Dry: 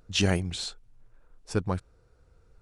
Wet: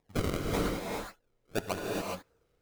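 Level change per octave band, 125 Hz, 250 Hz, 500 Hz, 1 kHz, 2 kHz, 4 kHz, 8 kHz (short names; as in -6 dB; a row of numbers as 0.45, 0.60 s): -6.5, -3.0, 0.0, +2.0, -3.5, -9.5, -6.0 dB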